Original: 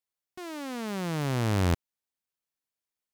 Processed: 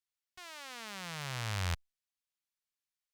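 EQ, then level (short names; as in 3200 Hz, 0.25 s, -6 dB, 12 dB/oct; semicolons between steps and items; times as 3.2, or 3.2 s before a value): passive tone stack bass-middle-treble 10-0-10; high shelf 7900 Hz -10 dB; +2.0 dB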